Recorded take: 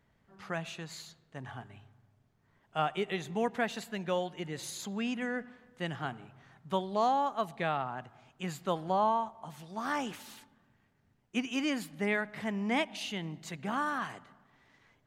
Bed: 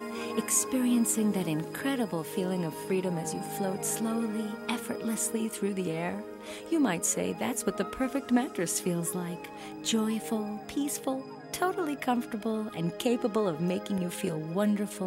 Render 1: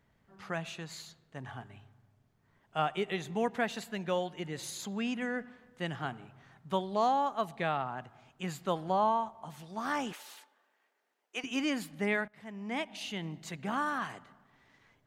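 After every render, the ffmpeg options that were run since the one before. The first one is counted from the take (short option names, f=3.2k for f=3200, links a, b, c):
-filter_complex "[0:a]asettb=1/sr,asplit=3[a][b][c];[a]atrim=end=10.134[d];[b]atrim=start=10.13:end=11.44,asetpts=PTS-STARTPTS,afade=t=in:d=0.004:c=qsin,afade=t=out:st=1.306:d=0.004:c=qsin,highpass=f=420:w=0.5412,highpass=f=420:w=1.3066[e];[c]atrim=start=11.436[f];[d][e]acrossfade=d=0.004:c1=hsin:c2=qsin[g];[g][f]acrossfade=d=0.004:c1=qsin:c2=hsin,asplit=2[h][i];[h]atrim=end=12.28,asetpts=PTS-STARTPTS,afade=t=out:st=12.276:d=0.004:c=hsin:silence=0.1[j];[i]atrim=start=12.28,asetpts=PTS-STARTPTS,afade=t=in:d=0.98:silence=0.1[k];[j][k]concat=n=2:v=0:a=1"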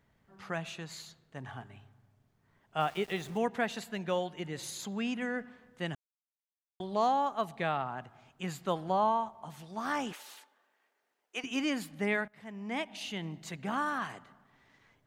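-filter_complex "[0:a]asplit=3[a][b][c];[a]afade=t=out:st=2.79:d=0.02[d];[b]aeval=exprs='val(0)*gte(abs(val(0)),0.00447)':c=same,afade=t=in:st=2.79:d=0.02,afade=t=out:st=3.37:d=0.02[e];[c]afade=t=in:st=3.37:d=0.02[f];[d][e][f]amix=inputs=3:normalize=0,asplit=3[g][h][i];[g]atrim=end=5.95,asetpts=PTS-STARTPTS,afade=t=out:st=5.946:d=0.004:c=hsin[j];[h]atrim=start=5.95:end=6.8,asetpts=PTS-STARTPTS,volume=0[k];[i]atrim=start=6.8,asetpts=PTS-STARTPTS,afade=t=in:d=0.004:c=hsin[l];[j][k][l]concat=n=3:v=0:a=1"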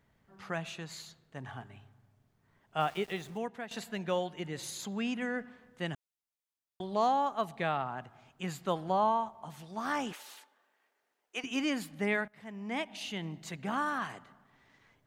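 -filter_complex "[0:a]asplit=2[a][b];[a]atrim=end=3.71,asetpts=PTS-STARTPTS,afade=t=out:st=2.91:d=0.8:silence=0.223872[c];[b]atrim=start=3.71,asetpts=PTS-STARTPTS,afade=t=in:d=0.004:c=hsin:silence=0.223872[d];[c][d]concat=n=2:v=0:a=1"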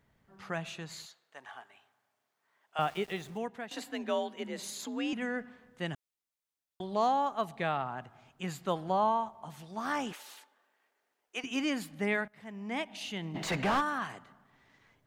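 -filter_complex "[0:a]asettb=1/sr,asplit=3[a][b][c];[a]atrim=end=1.064[d];[b]atrim=start=1.06:end=2.79,asetpts=PTS-STARTPTS,afade=t=in:d=0.004:c=qsin,afade=t=out:st=1.726:d=0.004:c=qsin,highpass=670[e];[c]atrim=start=2.786[f];[d][e]acrossfade=d=0.004:c1=hsin:c2=qsin[g];[g][f]acrossfade=d=0.004:c1=qsin:c2=hsin,asettb=1/sr,asplit=3[h][i][j];[h]atrim=end=3.704[k];[i]atrim=start=3.7:end=5.13,asetpts=PTS-STARTPTS,afade=t=in:d=0.004:c=qsin,afade=t=out:st=1.426:d=0.004:c=qsin,afreqshift=53[l];[j]atrim=start=5.126[m];[k][l]acrossfade=d=0.004:c1=hsin:c2=qsin[n];[n][m]acrossfade=d=0.004:c1=qsin:c2=hsin,asplit=3[o][p][q];[o]afade=t=out:st=13.34:d=0.02[r];[p]asplit=2[s][t];[t]highpass=f=720:p=1,volume=32dB,asoftclip=type=tanh:threshold=-20dB[u];[s][u]amix=inputs=2:normalize=0,lowpass=f=1.6k:p=1,volume=-6dB,afade=t=in:st=13.34:d=0.02,afade=t=out:st=13.8:d=0.02[v];[q]afade=t=in:st=13.8:d=0.02[w];[r][v][w]amix=inputs=3:normalize=0"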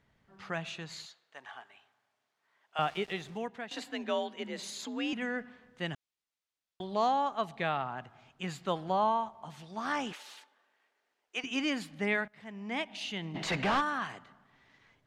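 -af "lowpass=3.7k,aemphasis=mode=production:type=75fm"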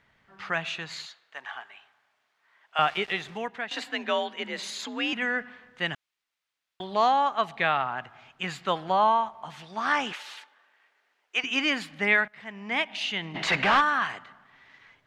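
-af "equalizer=f=1.9k:w=0.41:g=10.5"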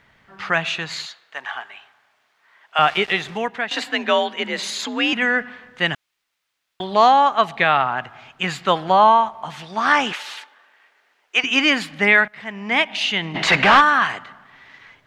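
-af "volume=9dB,alimiter=limit=-3dB:level=0:latency=1"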